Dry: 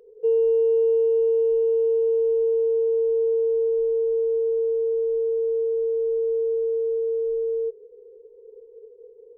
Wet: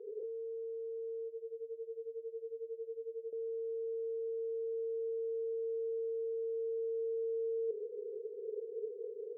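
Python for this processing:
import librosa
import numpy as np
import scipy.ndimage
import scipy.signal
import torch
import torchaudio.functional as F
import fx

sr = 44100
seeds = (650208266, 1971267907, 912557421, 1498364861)

y = fx.over_compress(x, sr, threshold_db=-32.0, ratio=-1.0)
y = fx.bandpass_q(y, sr, hz=400.0, q=4.7)
y = fx.tremolo(y, sr, hz=11.0, depth=0.87, at=(1.27, 3.33))
y = F.gain(torch.from_numpy(y), -2.5).numpy()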